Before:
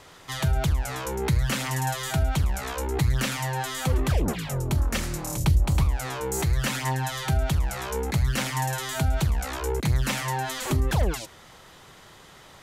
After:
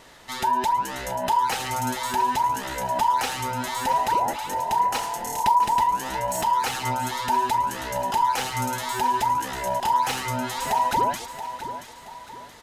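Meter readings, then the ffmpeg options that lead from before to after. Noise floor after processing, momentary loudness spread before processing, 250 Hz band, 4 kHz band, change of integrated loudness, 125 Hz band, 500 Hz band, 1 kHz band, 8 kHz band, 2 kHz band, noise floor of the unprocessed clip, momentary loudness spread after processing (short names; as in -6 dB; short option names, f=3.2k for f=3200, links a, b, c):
-44 dBFS, 5 LU, -4.0 dB, +1.0 dB, +2.5 dB, -13.5 dB, +0.5 dB, +13.0 dB, 0.0 dB, +0.5 dB, -50 dBFS, 9 LU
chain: -af "afftfilt=real='real(if(between(b,1,1008),(2*floor((b-1)/48)+1)*48-b,b),0)':imag='imag(if(between(b,1,1008),(2*floor((b-1)/48)+1)*48-b,b),0)*if(between(b,1,1008),-1,1)':win_size=2048:overlap=0.75,aecho=1:1:677|1354|2031|2708:0.266|0.104|0.0405|0.0158"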